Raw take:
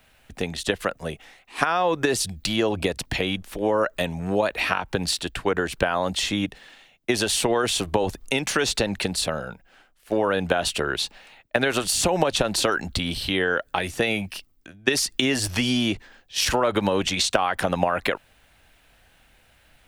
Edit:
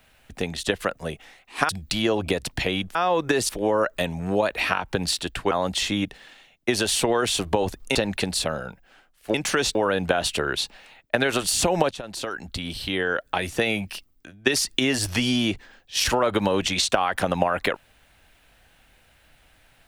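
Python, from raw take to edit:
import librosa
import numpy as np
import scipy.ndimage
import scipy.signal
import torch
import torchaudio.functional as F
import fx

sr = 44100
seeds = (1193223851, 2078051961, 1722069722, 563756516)

y = fx.edit(x, sr, fx.move(start_s=1.69, length_s=0.54, to_s=3.49),
    fx.cut(start_s=5.51, length_s=0.41),
    fx.move(start_s=8.36, length_s=0.41, to_s=10.16),
    fx.fade_in_from(start_s=12.32, length_s=1.5, floor_db=-15.5), tone=tone)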